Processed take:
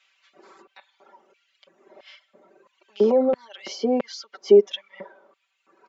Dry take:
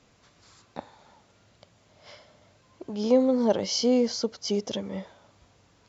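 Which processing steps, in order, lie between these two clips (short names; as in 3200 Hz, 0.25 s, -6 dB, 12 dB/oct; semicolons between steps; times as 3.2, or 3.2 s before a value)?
limiter -21.5 dBFS, peak gain reduction 11 dB; reverb removal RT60 1.9 s; LFO high-pass square 1.5 Hz 350–2900 Hz; three-band isolator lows -13 dB, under 190 Hz, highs -19 dB, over 2000 Hz; comb 5.2 ms, depth 97%; gain +8.5 dB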